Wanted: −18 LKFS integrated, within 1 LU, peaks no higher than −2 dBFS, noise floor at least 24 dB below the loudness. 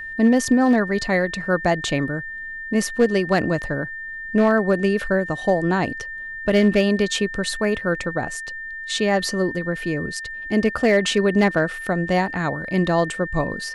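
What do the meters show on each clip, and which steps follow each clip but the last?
share of clipped samples 0.5%; peaks flattened at −9.0 dBFS; interfering tone 1,800 Hz; level of the tone −30 dBFS; integrated loudness −21.5 LKFS; sample peak −9.0 dBFS; target loudness −18.0 LKFS
→ clipped peaks rebuilt −9 dBFS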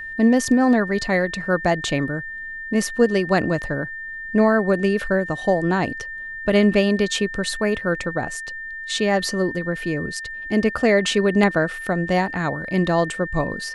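share of clipped samples 0.0%; interfering tone 1,800 Hz; level of the tone −30 dBFS
→ notch filter 1,800 Hz, Q 30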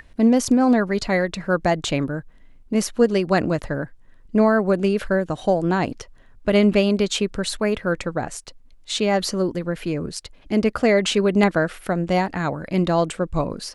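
interfering tone none found; integrated loudness −21.0 LKFS; sample peak −2.0 dBFS; target loudness −18.0 LKFS
→ level +3 dB
brickwall limiter −2 dBFS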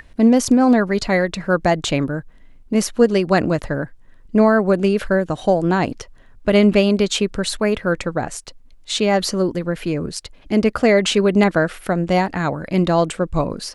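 integrated loudness −18.5 LKFS; sample peak −2.0 dBFS; background noise floor −46 dBFS

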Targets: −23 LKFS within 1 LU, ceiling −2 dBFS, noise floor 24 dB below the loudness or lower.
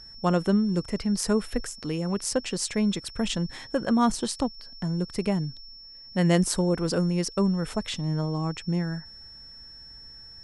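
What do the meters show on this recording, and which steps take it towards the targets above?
interfering tone 5,400 Hz; level of the tone −44 dBFS; integrated loudness −27.0 LKFS; sample peak −7.0 dBFS; target loudness −23.0 LKFS
→ notch filter 5,400 Hz, Q 30
level +4 dB

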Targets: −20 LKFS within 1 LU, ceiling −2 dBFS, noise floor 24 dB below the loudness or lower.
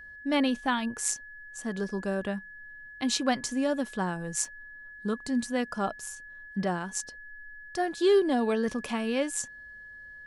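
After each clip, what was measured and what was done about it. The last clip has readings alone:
number of dropouts 1; longest dropout 2.5 ms; interfering tone 1,700 Hz; level of the tone −44 dBFS; integrated loudness −30.0 LKFS; sample peak −11.0 dBFS; target loudness −20.0 LKFS
→ repair the gap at 0:04.45, 2.5 ms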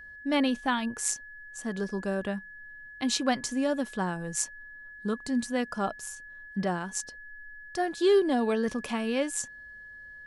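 number of dropouts 0; interfering tone 1,700 Hz; level of the tone −44 dBFS
→ notch filter 1,700 Hz, Q 30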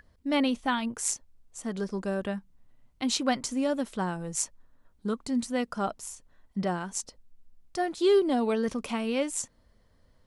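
interfering tone none found; integrated loudness −30.0 LKFS; sample peak −10.5 dBFS; target loudness −20.0 LKFS
→ level +10 dB
brickwall limiter −2 dBFS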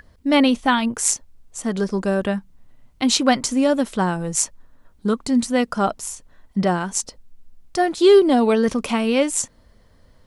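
integrated loudness −20.0 LKFS; sample peak −2.0 dBFS; background noise floor −55 dBFS

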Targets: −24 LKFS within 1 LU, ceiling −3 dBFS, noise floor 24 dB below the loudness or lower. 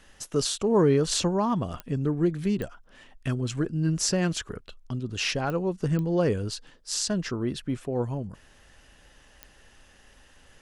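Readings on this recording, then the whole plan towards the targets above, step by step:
number of clicks 5; integrated loudness −27.5 LKFS; sample peak −10.0 dBFS; target loudness −24.0 LKFS
→ click removal
level +3.5 dB

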